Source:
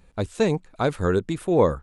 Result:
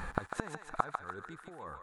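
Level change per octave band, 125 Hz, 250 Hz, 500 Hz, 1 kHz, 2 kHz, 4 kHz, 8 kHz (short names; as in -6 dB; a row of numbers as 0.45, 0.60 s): -19.5, -20.0, -23.0, -8.0, -7.5, -18.0, -12.0 dB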